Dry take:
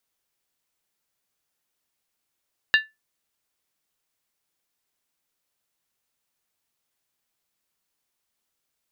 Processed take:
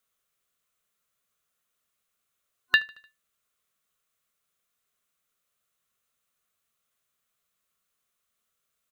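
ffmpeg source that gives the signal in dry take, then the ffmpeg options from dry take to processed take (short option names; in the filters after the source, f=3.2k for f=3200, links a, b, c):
-f lavfi -i "aevalsrc='0.282*pow(10,-3*t/0.2)*sin(2*PI*1750*t)+0.15*pow(10,-3*t/0.158)*sin(2*PI*2789.5*t)+0.0794*pow(10,-3*t/0.137)*sin(2*PI*3738*t)+0.0422*pow(10,-3*t/0.132)*sin(2*PI*4018*t)+0.0224*pow(10,-3*t/0.123)*sin(2*PI*4642.8*t)':d=0.63:s=44100"
-af "superequalizer=6b=0.447:9b=0.447:10b=1.78:14b=0.631,aecho=1:1:75|150|225|300:0.0708|0.0389|0.0214|0.0118"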